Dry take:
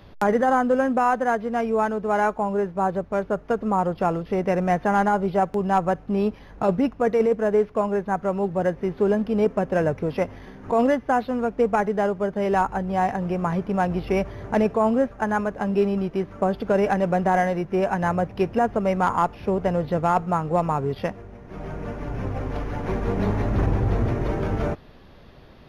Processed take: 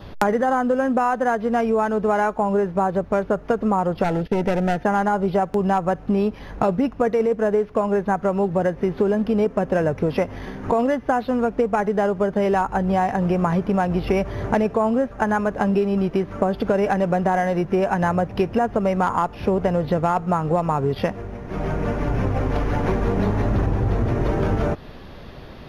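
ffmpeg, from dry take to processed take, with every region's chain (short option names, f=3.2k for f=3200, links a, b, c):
-filter_complex "[0:a]asettb=1/sr,asplit=3[a][b][c];[a]atrim=end=4.044[d];[b]atrim=start=4.04:end=4.85,asetpts=PTS-STARTPTS,afade=t=in:d=0.004:c=qsin,afade=t=out:st=0.806:d=0.004:c=qsin,agate=range=-21dB:threshold=-39dB:ratio=16:release=100:detection=peak,aeval=exprs='clip(val(0),-1,0.0531)':c=same,asuperstop=centerf=1100:order=4:qfactor=3.9[e];[c]atrim=start=4.846[f];[d][e]acrossfade=d=0.004:c1=hsin:c2=qsin[g];[g][f]acrossfade=d=0.004:c1=qsin:c2=hsin,adynamicequalizer=threshold=0.00316:dfrequency=2200:dqfactor=6.1:tfrequency=2200:tqfactor=6.1:attack=5:release=100:ratio=0.375:range=1.5:mode=cutabove:tftype=bell,acompressor=threshold=-26dB:ratio=6,volume=9dB"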